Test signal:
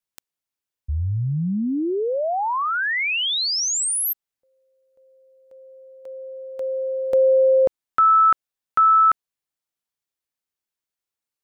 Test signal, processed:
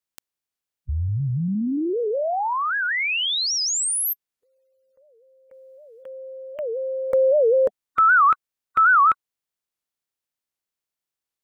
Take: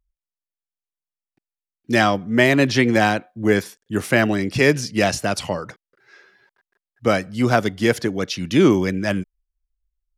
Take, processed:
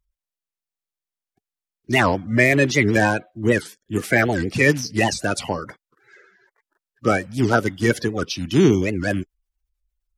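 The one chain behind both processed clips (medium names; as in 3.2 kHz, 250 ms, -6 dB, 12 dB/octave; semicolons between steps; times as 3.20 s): coarse spectral quantiser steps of 30 dB; warped record 78 rpm, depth 250 cents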